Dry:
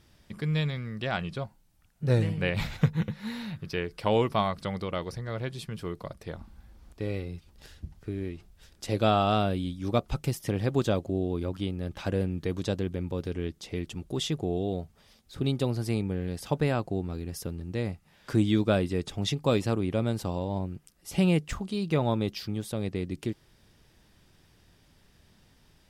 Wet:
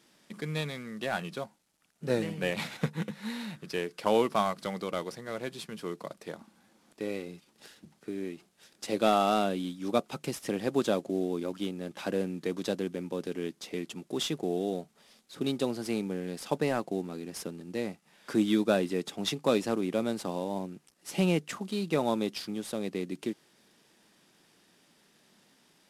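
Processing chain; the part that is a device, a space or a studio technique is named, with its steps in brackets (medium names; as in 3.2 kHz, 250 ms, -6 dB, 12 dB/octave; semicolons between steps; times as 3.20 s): early wireless headset (high-pass 190 Hz 24 dB/octave; CVSD coder 64 kbps)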